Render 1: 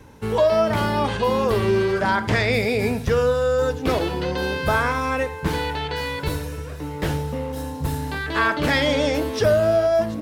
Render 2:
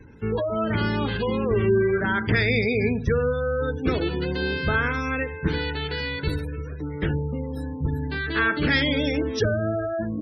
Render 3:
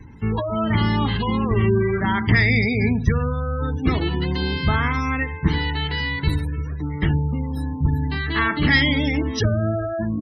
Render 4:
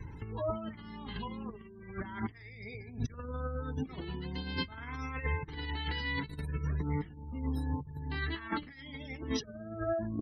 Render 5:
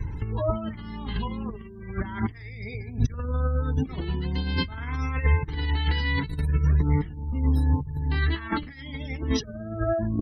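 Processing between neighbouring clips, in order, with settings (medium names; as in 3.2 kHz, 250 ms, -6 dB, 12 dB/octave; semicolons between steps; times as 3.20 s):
spectral gate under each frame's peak -25 dB strong; high-order bell 780 Hz -10 dB 1.3 oct
comb 1 ms, depth 65%; trim +2.5 dB
compressor with a negative ratio -27 dBFS, ratio -0.5; flange 0.38 Hz, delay 1.8 ms, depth 3.6 ms, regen -41%; trim -5.5 dB
bass shelf 100 Hz +11.5 dB; trim +6.5 dB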